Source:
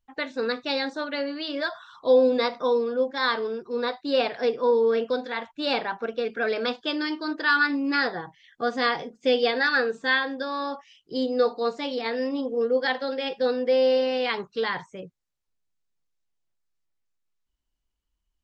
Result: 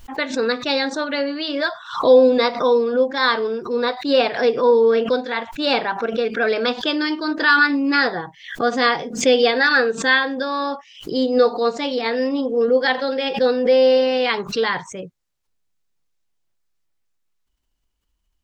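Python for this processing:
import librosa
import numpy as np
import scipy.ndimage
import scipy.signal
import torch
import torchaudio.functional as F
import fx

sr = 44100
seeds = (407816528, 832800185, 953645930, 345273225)

y = fx.pre_swell(x, sr, db_per_s=120.0)
y = F.gain(torch.from_numpy(y), 6.5).numpy()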